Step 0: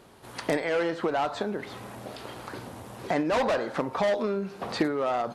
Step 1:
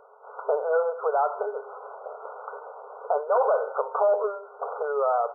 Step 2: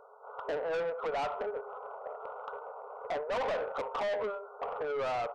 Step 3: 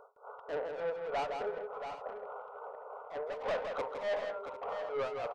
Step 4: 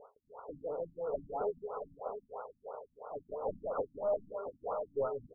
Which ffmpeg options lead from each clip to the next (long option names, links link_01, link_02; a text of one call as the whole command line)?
ffmpeg -i in.wav -af "afftfilt=real='re*between(b*sr/4096,400,1500)':imag='im*between(b*sr/4096,400,1500)':win_size=4096:overlap=0.75,volume=4dB" out.wav
ffmpeg -i in.wav -af "asoftclip=type=tanh:threshold=-27.5dB,volume=-2.5dB" out.wav
ffmpeg -i in.wav -filter_complex "[0:a]tremolo=f=3.4:d=0.95,asplit=2[link_01][link_02];[link_02]aecho=0:1:163|679|751:0.501|0.376|0.168[link_03];[link_01][link_03]amix=inputs=2:normalize=0" out.wav
ffmpeg -i in.wav -af "aresample=8000,acrusher=bits=5:mode=log:mix=0:aa=0.000001,aresample=44100,afftfilt=real='re*lt(b*sr/1024,260*pow(1500/260,0.5+0.5*sin(2*PI*3*pts/sr)))':imag='im*lt(b*sr/1024,260*pow(1500/260,0.5+0.5*sin(2*PI*3*pts/sr)))':win_size=1024:overlap=0.75,volume=2.5dB" out.wav